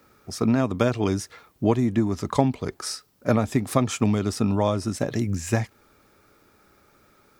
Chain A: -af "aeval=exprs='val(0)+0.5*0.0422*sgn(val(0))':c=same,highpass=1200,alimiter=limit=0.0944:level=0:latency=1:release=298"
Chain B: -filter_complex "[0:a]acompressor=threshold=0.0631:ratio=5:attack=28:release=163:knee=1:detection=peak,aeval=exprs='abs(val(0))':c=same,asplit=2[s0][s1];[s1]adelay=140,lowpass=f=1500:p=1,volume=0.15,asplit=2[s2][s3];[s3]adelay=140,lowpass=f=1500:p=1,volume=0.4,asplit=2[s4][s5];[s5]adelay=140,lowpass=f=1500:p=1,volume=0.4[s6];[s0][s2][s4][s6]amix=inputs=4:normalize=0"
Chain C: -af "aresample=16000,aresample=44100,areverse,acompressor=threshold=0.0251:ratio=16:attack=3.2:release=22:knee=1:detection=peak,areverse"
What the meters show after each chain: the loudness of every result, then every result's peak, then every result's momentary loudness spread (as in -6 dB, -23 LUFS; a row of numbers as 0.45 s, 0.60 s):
-32.0 LUFS, -31.5 LUFS, -35.5 LUFS; -20.5 dBFS, -5.5 dBFS, -22.5 dBFS; 5 LU, 6 LU, 4 LU